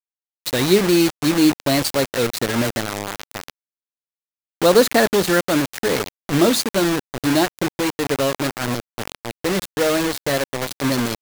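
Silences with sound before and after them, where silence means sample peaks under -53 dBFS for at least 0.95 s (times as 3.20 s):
3.50–4.62 s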